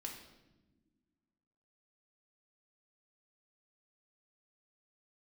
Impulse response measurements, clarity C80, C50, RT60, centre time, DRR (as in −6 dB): 8.0 dB, 5.5 dB, non-exponential decay, 33 ms, −0.5 dB